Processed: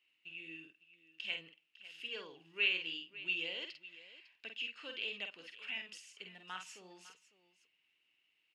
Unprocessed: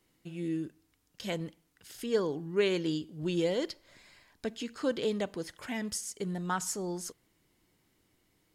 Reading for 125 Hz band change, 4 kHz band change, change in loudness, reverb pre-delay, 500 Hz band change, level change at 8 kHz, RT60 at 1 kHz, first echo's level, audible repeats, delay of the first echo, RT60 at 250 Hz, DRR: under -25 dB, +1.5 dB, -6.0 dB, no reverb, -20.5 dB, -19.5 dB, no reverb, -6.0 dB, 2, 49 ms, no reverb, no reverb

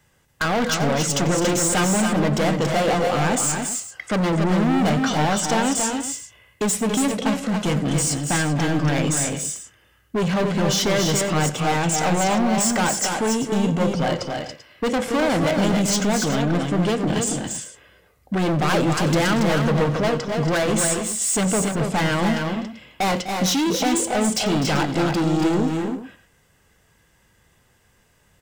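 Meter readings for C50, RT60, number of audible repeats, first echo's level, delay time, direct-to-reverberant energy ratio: no reverb, no reverb, 4, -17.5 dB, 92 ms, no reverb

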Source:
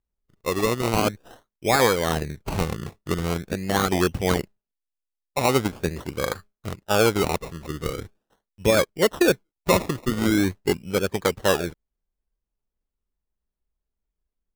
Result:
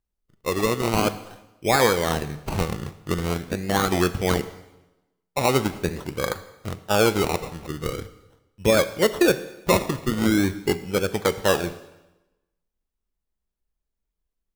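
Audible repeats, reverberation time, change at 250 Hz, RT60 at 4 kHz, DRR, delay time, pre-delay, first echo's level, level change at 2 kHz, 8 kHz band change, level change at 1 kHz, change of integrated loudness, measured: no echo, 1.0 s, +0.5 dB, 0.90 s, 11.5 dB, no echo, 4 ms, no echo, +0.5 dB, +0.5 dB, +0.5 dB, 0.0 dB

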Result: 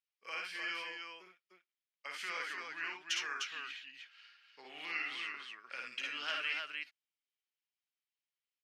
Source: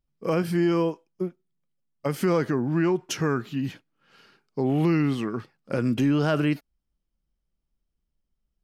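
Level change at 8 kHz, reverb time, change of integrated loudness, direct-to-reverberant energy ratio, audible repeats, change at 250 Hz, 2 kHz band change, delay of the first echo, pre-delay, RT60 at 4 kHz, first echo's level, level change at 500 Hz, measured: -8.0 dB, no reverb, -14.0 dB, no reverb, 2, -37.0 dB, -2.0 dB, 55 ms, no reverb, no reverb, -5.0 dB, -28.5 dB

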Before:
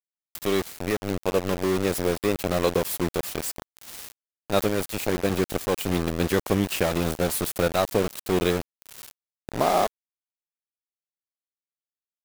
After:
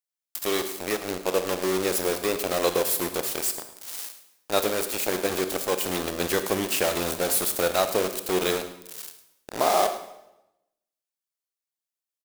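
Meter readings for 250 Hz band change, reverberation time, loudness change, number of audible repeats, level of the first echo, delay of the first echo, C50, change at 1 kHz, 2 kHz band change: -4.5 dB, 0.90 s, 0.0 dB, 1, -15.5 dB, 106 ms, 9.5 dB, +0.5 dB, +1.0 dB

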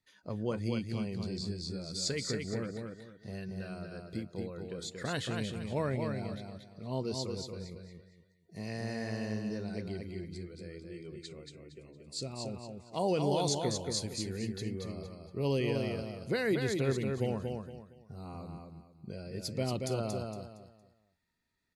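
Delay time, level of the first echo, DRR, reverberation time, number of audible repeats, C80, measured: 231 ms, -4.5 dB, no reverb, no reverb, 3, no reverb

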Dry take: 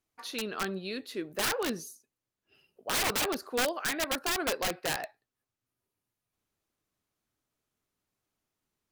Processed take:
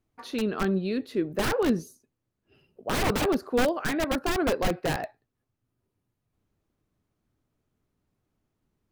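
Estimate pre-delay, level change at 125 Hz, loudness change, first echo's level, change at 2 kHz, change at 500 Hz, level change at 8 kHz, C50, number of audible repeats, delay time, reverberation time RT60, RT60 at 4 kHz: no reverb, +13.0 dB, +4.0 dB, no echo, +1.0 dB, +7.5 dB, -5.0 dB, no reverb, no echo, no echo, no reverb, no reverb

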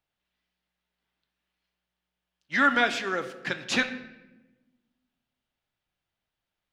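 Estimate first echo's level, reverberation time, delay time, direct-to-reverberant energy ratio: no echo, 1.1 s, no echo, 8.0 dB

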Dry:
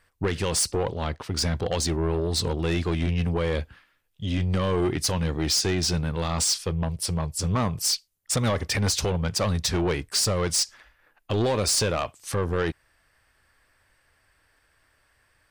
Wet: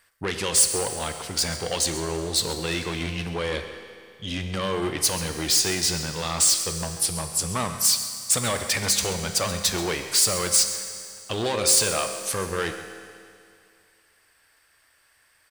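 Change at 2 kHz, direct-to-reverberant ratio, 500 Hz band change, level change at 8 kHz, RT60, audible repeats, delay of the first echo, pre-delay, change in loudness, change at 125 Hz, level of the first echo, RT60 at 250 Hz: +3.5 dB, 6.5 dB, -1.5 dB, +6.5 dB, 2.3 s, 1, 134 ms, 10 ms, +2.5 dB, -7.0 dB, -15.0 dB, 2.3 s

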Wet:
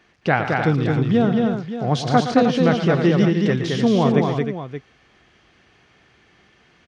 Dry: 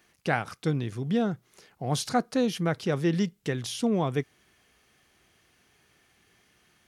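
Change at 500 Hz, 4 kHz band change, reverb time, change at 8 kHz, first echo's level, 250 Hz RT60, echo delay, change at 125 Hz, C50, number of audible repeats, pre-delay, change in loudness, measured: +10.5 dB, +7.0 dB, no reverb, -1.0 dB, -11.0 dB, no reverb, 116 ms, +10.5 dB, no reverb, 4, no reverb, +9.5 dB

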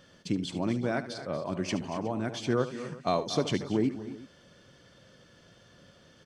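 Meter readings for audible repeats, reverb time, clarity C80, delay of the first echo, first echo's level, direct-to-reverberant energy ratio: 3, no reverb, no reverb, 74 ms, -13.5 dB, no reverb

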